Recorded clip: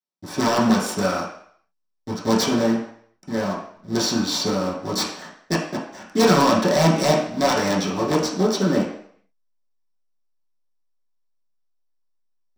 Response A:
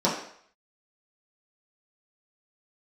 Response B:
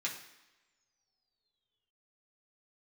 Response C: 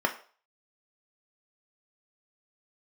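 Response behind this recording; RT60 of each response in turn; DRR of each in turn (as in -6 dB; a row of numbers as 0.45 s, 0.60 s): A; 0.60 s, no single decay rate, 0.45 s; -8.0 dB, -4.0 dB, 3.5 dB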